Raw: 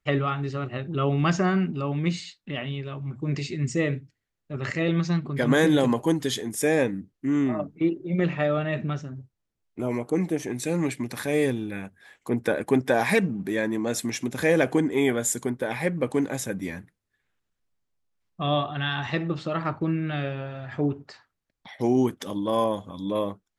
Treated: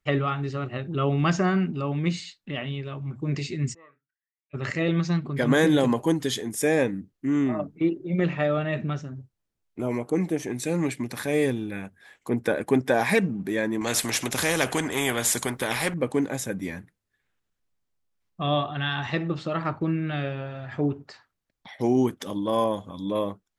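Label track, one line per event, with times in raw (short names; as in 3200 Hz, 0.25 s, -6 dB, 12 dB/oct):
3.730000	4.530000	band-pass 940 Hz -> 2500 Hz, Q 16
13.810000	15.940000	spectral compressor 2:1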